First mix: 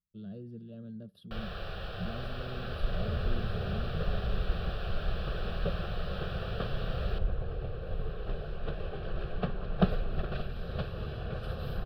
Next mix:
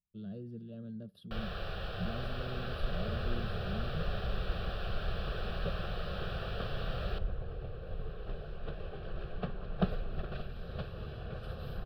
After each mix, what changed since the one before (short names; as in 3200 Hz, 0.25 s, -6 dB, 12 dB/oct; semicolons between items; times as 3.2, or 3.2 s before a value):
second sound -5.0 dB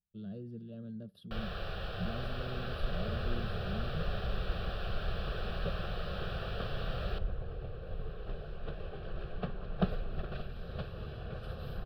none